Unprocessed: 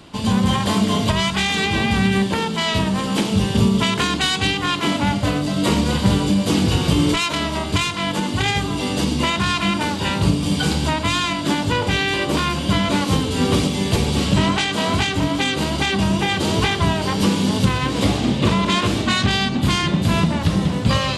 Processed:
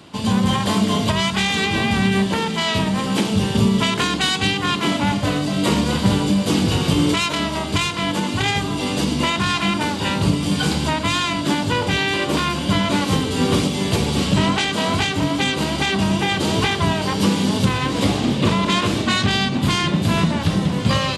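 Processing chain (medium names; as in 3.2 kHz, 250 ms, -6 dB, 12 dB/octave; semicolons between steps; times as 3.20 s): high-pass 81 Hz; delay 1096 ms -15.5 dB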